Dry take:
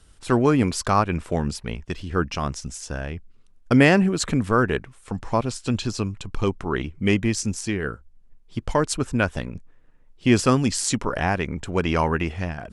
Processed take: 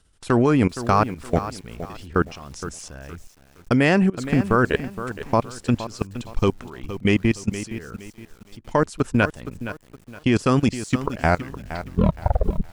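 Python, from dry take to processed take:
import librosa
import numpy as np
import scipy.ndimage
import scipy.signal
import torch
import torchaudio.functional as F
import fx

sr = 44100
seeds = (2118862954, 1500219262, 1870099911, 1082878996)

y = fx.tape_stop_end(x, sr, length_s=1.58)
y = fx.level_steps(y, sr, step_db=22)
y = fx.echo_crushed(y, sr, ms=467, feedback_pct=35, bits=8, wet_db=-12)
y = y * 10.0 ** (5.5 / 20.0)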